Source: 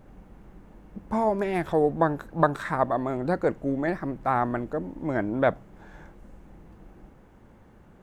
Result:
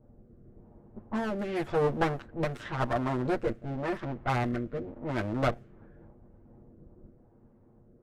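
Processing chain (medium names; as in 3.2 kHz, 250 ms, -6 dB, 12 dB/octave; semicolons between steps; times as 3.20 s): comb filter that takes the minimum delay 8.5 ms; level-controlled noise filter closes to 600 Hz, open at -23 dBFS; saturation -12 dBFS, distortion -25 dB; rotary cabinet horn 0.9 Hz; trim -1 dB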